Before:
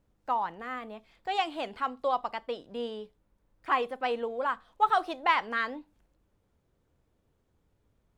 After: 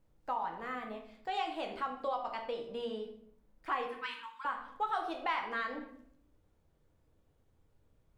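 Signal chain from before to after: 3.87–4.45 s: brick-wall FIR high-pass 840 Hz; simulated room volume 100 m³, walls mixed, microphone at 0.63 m; compression 2:1, threshold -33 dBFS, peak gain reduction 8.5 dB; trim -3 dB

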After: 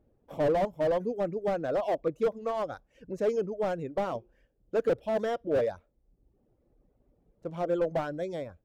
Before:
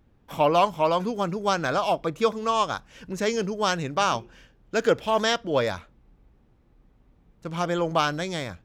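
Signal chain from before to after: reverb removal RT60 0.76 s; FFT filter 190 Hz 0 dB, 570 Hz +10 dB, 960 Hz -4 dB, 4 kHz -10 dB; slew-rate limiter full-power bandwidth 93 Hz; trim -7.5 dB

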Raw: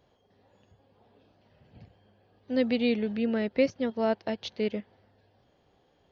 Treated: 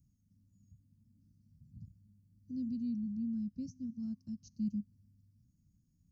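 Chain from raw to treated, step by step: inverse Chebyshev band-stop 400–3700 Hz, stop band 40 dB; 2.51–4.56 s: feedback comb 85 Hz, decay 1.5 s, harmonics odd, mix 40%; trim +1.5 dB

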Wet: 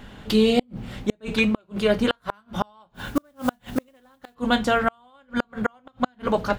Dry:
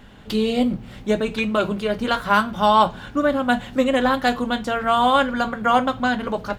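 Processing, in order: 2.94–4.35 s: modulation noise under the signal 18 dB; inverted gate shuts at -11 dBFS, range -40 dB; trim +3 dB

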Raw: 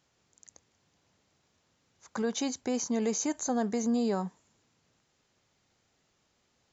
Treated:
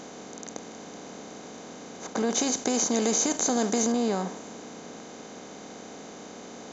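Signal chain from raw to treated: spectral levelling over time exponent 0.4; treble shelf 4.6 kHz -4.5 dB, from 2.32 s +8 dB, from 3.92 s -5 dB

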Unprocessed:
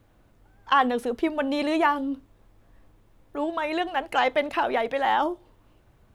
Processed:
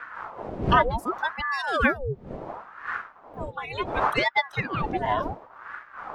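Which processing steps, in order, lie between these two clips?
expander on every frequency bin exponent 2; wind noise 300 Hz -36 dBFS; flange 0.4 Hz, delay 2.3 ms, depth 2.1 ms, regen -53%; ring modulator with a swept carrier 790 Hz, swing 85%, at 0.69 Hz; trim +8.5 dB

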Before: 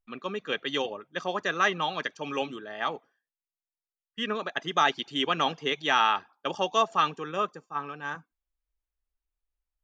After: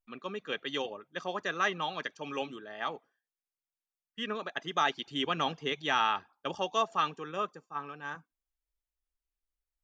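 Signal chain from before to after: 5.07–6.59 s: bass shelf 110 Hz +12 dB; trim -5 dB

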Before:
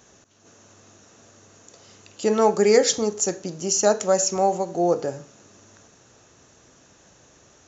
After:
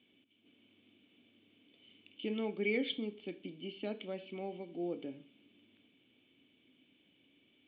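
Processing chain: cascade formant filter i; tilt EQ +4.5 dB/octave; trim +3 dB

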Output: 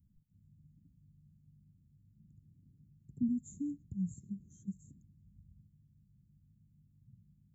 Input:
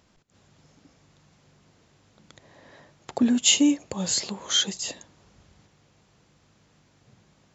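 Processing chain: inverse Chebyshev band-stop 570–5100 Hz, stop band 60 dB; trim -1 dB

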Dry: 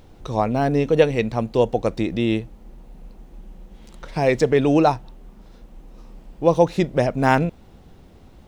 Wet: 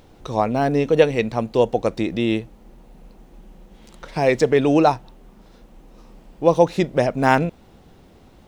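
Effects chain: bass shelf 130 Hz -7 dB; trim +1.5 dB

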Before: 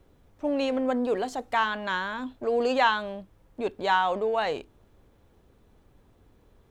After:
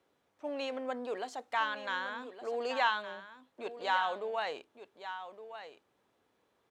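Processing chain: frequency weighting A; delay 1165 ms -11.5 dB; trim -7 dB

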